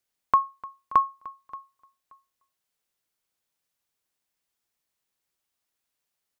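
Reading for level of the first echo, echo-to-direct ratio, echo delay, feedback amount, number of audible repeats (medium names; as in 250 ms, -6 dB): -20.0 dB, -20.0 dB, 578 ms, 18%, 2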